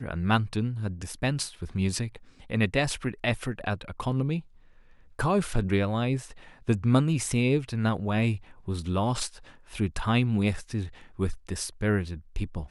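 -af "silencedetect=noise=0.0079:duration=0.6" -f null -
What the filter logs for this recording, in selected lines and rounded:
silence_start: 4.41
silence_end: 5.19 | silence_duration: 0.78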